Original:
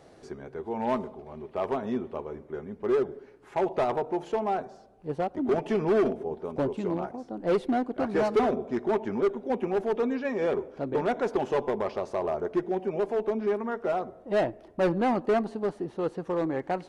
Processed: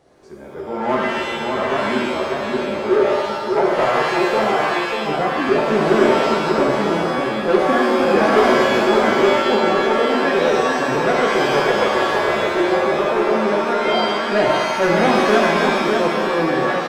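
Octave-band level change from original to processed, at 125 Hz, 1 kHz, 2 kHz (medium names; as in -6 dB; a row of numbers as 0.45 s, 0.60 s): +9.0 dB, +14.0 dB, +20.0 dB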